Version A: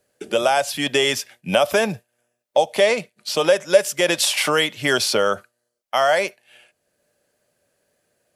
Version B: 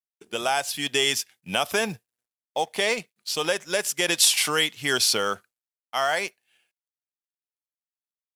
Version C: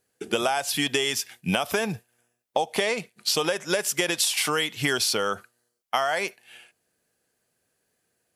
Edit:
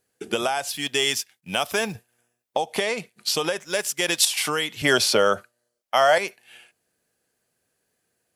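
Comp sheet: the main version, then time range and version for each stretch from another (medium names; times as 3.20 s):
C
0.68–1.95 s: from B
3.59–4.25 s: from B
4.82–6.18 s: from A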